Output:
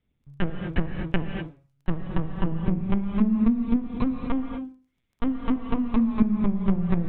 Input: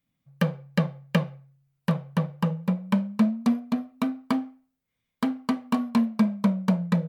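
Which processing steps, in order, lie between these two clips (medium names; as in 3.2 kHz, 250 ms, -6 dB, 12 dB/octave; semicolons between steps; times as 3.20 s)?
bass shelf 220 Hz +8 dB; compression 10:1, threshold -18 dBFS, peak gain reduction 7.5 dB; LPC vocoder at 8 kHz pitch kept; crackle 12 per s -55 dBFS; gated-style reverb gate 270 ms rising, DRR 4.5 dB; low-pass that closes with the level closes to 2.5 kHz, closed at -19.5 dBFS; trim +1.5 dB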